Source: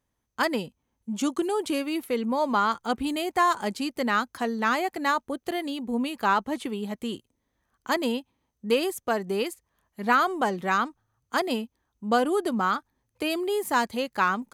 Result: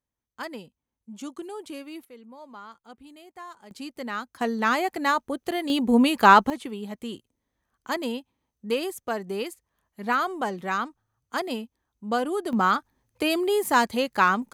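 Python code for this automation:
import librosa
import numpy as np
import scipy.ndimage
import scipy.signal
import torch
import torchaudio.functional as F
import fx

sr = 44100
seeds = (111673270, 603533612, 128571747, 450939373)

y = fx.gain(x, sr, db=fx.steps((0.0, -10.5), (2.05, -20.0), (3.71, -7.5), (4.41, 1.5), (5.7, 9.0), (6.5, -3.0), (12.53, 3.5)))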